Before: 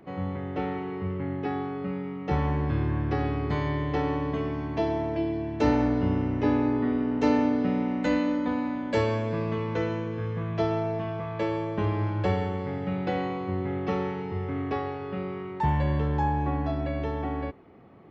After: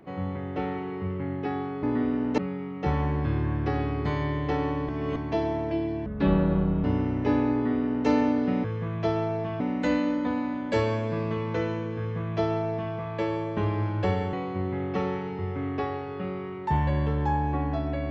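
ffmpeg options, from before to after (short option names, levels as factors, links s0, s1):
-filter_complex "[0:a]asplit=10[s0][s1][s2][s3][s4][s5][s6][s7][s8][s9];[s0]atrim=end=1.832[s10];[s1]atrim=start=6.698:end=7.252[s11];[s2]atrim=start=1.828:end=4.342[s12];[s3]atrim=start=4.338:end=4.612,asetpts=PTS-STARTPTS,areverse[s13];[s4]atrim=start=4.608:end=5.514[s14];[s5]atrim=start=5.51:end=6.01,asetpts=PTS-STARTPTS,asetrate=28224,aresample=44100,atrim=end_sample=34453,asetpts=PTS-STARTPTS[s15];[s6]atrim=start=6.006:end=7.812[s16];[s7]atrim=start=10.188:end=11.152[s17];[s8]atrim=start=7.808:end=12.542[s18];[s9]atrim=start=13.258[s19];[s10][s11]acrossfade=d=0.004:c1=hsin:c2=hsin[s20];[s20][s12]acrossfade=d=0.004:c1=hsin:c2=hsin[s21];[s21][s13]acrossfade=d=0.004:c1=hsin:c2=hsin[s22];[s22][s14]acrossfade=d=0.004:c1=hsin:c2=hsin[s23];[s23][s15]acrossfade=d=0.004:c1=hsin:c2=hsin[s24];[s24][s16]acrossfade=d=0.004:c1=hsin:c2=hsin[s25];[s25][s17]acrossfade=d=0.004:c1=hsin:c2=hsin[s26];[s26][s18]acrossfade=d=0.004:c1=hsin:c2=hsin[s27];[s27][s19]acrossfade=d=0.004:c1=hsin:c2=hsin"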